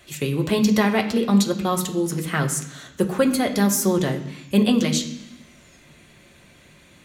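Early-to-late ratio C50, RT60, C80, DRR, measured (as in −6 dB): 10.0 dB, 0.85 s, 12.5 dB, 2.0 dB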